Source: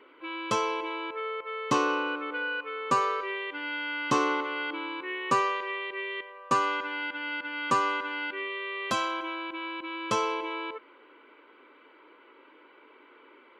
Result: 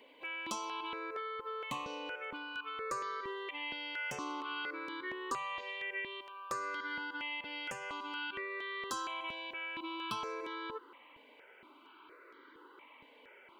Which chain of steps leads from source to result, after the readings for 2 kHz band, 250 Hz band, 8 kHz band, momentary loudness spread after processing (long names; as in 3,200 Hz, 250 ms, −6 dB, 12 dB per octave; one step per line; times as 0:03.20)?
−8.5 dB, −12.0 dB, −7.0 dB, 19 LU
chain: high-shelf EQ 3,600 Hz +9 dB
mains-hum notches 50/100/150 Hz
downward compressor 5 to 1, threshold −34 dBFS, peak gain reduction 13.5 dB
gain into a clipping stage and back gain 27 dB
step-sequenced phaser 4.3 Hz 360–2,600 Hz